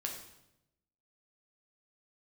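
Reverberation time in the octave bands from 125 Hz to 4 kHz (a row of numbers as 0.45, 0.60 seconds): 1.2, 1.1, 0.95, 0.80, 0.75, 0.75 seconds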